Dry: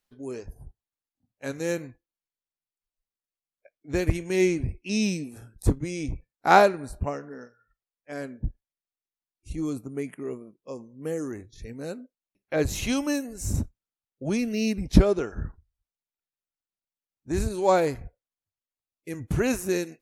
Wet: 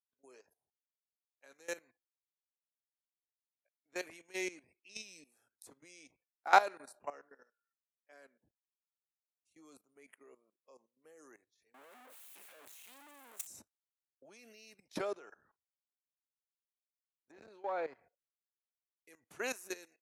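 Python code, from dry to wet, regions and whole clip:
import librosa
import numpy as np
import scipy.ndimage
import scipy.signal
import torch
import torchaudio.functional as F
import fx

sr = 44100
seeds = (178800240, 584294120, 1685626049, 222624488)

y = fx.chain(x, sr, fx.clip_1bit(),
    fx.peak_eq(hz=5100.0, db=-11.5, octaves=0.91),
    fx.band_widen(depth_pct=70), at=(11.74, 13.47))
y = fx.chain(y, sr, fx.clip_hard(threshold_db=-12.5),
    fx.air_absorb(metres=230.0),
    fx.transformer_sat(knee_hz=250.0), at=(17.31, 18.03))
y = scipy.signal.sosfilt(scipy.signal.butter(2, 670.0, 'highpass', fs=sr, output='sos'), y)
y = fx.level_steps(y, sr, step_db=16)
y = fx.band_widen(y, sr, depth_pct=40)
y = y * librosa.db_to_amplitude(-7.5)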